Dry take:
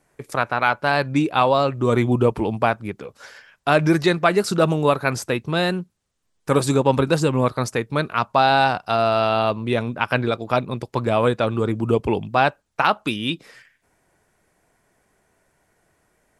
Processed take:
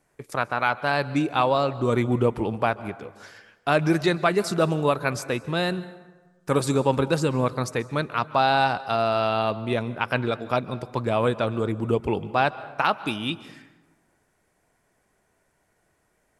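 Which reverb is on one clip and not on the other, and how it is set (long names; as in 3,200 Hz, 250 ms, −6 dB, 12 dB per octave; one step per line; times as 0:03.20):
dense smooth reverb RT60 1.3 s, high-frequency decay 0.55×, pre-delay 120 ms, DRR 16.5 dB
level −4 dB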